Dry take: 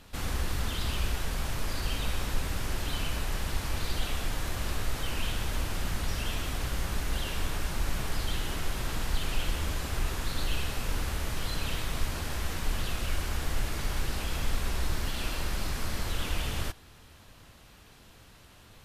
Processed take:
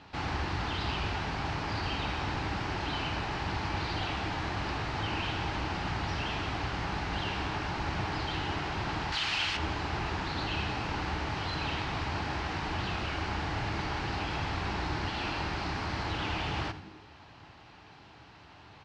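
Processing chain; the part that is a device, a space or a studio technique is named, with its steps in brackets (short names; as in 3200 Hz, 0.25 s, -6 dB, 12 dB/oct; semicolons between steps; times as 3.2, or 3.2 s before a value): frequency-shifting delay pedal into a guitar cabinet (frequency-shifting echo 83 ms, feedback 49%, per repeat -110 Hz, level -15 dB; speaker cabinet 93–4600 Hz, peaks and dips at 220 Hz -6 dB, 310 Hz +3 dB, 520 Hz -6 dB, 840 Hz +8 dB, 3500 Hz -5 dB); 9.12–9.57 tilt shelf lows -10 dB, about 1100 Hz; gain +3 dB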